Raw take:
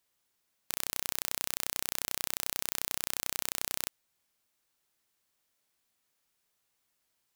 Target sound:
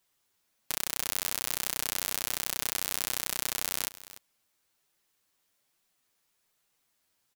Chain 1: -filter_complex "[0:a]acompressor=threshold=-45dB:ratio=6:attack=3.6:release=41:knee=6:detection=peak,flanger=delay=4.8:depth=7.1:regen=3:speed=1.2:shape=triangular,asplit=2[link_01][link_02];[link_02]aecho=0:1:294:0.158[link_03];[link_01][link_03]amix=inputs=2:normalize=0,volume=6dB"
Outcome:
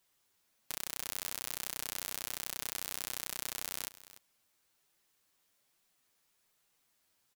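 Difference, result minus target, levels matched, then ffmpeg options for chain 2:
downward compressor: peak gain reduction +7.5 dB
-filter_complex "[0:a]flanger=delay=4.8:depth=7.1:regen=3:speed=1.2:shape=triangular,asplit=2[link_01][link_02];[link_02]aecho=0:1:294:0.158[link_03];[link_01][link_03]amix=inputs=2:normalize=0,volume=6dB"

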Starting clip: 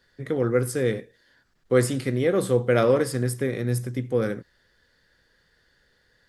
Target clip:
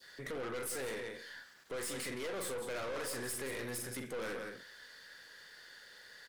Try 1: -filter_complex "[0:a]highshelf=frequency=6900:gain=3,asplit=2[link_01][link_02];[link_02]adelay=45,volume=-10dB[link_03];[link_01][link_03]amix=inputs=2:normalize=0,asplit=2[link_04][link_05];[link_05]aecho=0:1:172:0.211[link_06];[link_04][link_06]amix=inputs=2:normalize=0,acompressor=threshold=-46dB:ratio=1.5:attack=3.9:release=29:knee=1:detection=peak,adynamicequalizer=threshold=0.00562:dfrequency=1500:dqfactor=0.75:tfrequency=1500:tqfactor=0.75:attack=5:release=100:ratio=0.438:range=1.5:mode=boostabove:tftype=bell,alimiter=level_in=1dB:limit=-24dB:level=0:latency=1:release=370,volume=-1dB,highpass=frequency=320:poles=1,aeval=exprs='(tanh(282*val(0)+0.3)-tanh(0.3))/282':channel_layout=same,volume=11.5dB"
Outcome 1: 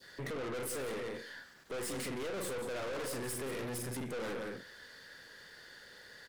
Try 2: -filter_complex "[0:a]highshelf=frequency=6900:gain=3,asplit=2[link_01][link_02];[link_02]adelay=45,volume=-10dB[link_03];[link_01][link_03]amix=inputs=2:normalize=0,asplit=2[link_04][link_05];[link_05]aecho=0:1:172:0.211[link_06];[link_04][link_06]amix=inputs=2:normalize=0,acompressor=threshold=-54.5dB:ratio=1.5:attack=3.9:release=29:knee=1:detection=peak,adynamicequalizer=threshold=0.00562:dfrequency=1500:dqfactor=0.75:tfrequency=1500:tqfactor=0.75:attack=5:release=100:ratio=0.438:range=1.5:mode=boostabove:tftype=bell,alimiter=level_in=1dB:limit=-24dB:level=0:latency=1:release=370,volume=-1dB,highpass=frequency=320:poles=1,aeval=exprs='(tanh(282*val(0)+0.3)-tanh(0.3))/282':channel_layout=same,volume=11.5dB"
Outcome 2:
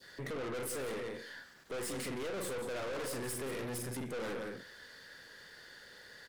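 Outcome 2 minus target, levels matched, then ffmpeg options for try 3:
250 Hz band +3.0 dB
-filter_complex "[0:a]highshelf=frequency=6900:gain=3,asplit=2[link_01][link_02];[link_02]adelay=45,volume=-10dB[link_03];[link_01][link_03]amix=inputs=2:normalize=0,asplit=2[link_04][link_05];[link_05]aecho=0:1:172:0.211[link_06];[link_04][link_06]amix=inputs=2:normalize=0,acompressor=threshold=-54.5dB:ratio=1.5:attack=3.9:release=29:knee=1:detection=peak,adynamicequalizer=threshold=0.00562:dfrequency=1500:dqfactor=0.75:tfrequency=1500:tqfactor=0.75:attack=5:release=100:ratio=0.438:range=1.5:mode=boostabove:tftype=bell,alimiter=level_in=1dB:limit=-24dB:level=0:latency=1:release=370,volume=-1dB,highpass=frequency=1000:poles=1,aeval=exprs='(tanh(282*val(0)+0.3)-tanh(0.3))/282':channel_layout=same,volume=11.5dB"

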